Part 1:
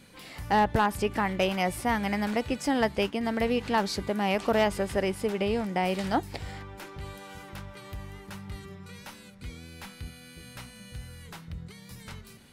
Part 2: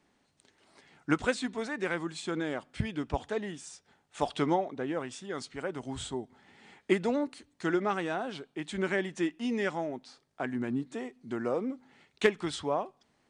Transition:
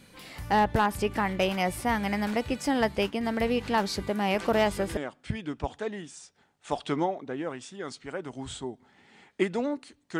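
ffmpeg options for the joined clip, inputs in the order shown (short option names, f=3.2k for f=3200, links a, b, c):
-filter_complex "[1:a]asplit=2[a][b];[0:a]apad=whole_dur=10.19,atrim=end=10.19,atrim=end=4.972[c];[b]atrim=start=2.468:end=7.69[d];[a]atrim=start=1.8:end=2.47,asetpts=PTS-STARTPTS,volume=-10.5dB,afade=t=in:d=0.004:c=hsin,afade=t=out:st=0.666:d=0.004:c=hsin,adelay=4300[e];[c][d]acrossfade=d=0.004:c1=hsin:c2=hsin[f];[f][e]amix=inputs=2:normalize=0"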